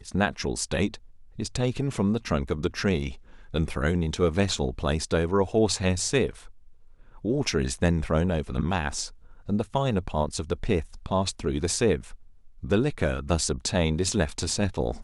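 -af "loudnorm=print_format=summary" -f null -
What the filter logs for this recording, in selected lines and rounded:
Input Integrated:    -26.8 LUFS
Input True Peak:      -8.0 dBTP
Input LRA:             2.0 LU
Input Threshold:     -37.3 LUFS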